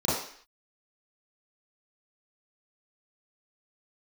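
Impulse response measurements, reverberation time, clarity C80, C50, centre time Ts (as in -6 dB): 0.55 s, 5.5 dB, 1.0 dB, 61 ms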